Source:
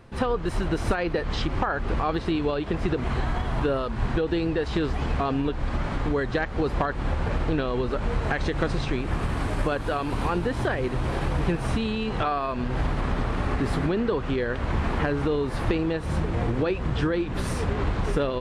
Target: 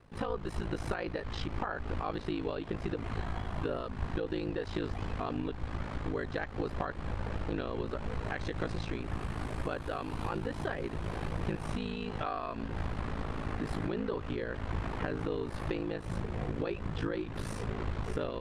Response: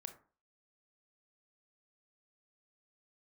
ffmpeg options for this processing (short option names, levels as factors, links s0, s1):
-af "aeval=exprs='val(0)*sin(2*PI*27*n/s)':c=same,volume=0.447"